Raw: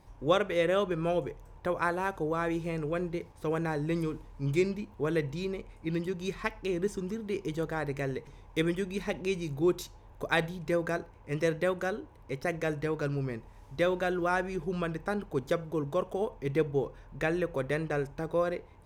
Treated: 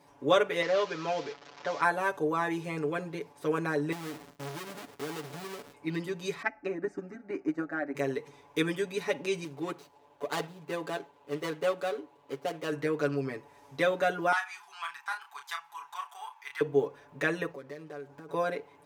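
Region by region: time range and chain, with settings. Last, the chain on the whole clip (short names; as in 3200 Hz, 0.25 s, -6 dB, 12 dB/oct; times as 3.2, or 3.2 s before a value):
0.62–1.81 delta modulation 32 kbps, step -39.5 dBFS + low shelf 360 Hz -8.5 dB
3.92–5.74 half-waves squared off + gate with hold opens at -40 dBFS, closes at -42 dBFS + compressor, threshold -39 dBFS
6.42–7.95 tape spacing loss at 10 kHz 26 dB + fixed phaser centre 670 Hz, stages 8 + transient shaper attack +11 dB, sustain 0 dB
9.44–12.72 median filter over 25 samples + low shelf 260 Hz -8.5 dB + notches 60/120 Hz
14.32–16.61 elliptic high-pass 840 Hz + doubler 31 ms -6 dB + core saturation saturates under 1200 Hz
17.5–18.29 median filter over 15 samples + compressor, threshold -43 dBFS
whole clip: HPF 250 Hz 12 dB/oct; comb 7 ms, depth 98%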